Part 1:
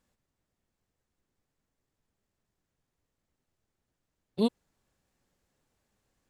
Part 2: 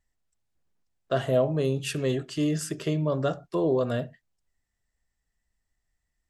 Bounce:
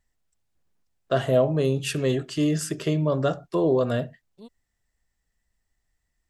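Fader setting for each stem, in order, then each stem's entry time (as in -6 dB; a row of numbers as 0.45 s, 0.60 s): -20.0 dB, +3.0 dB; 0.00 s, 0.00 s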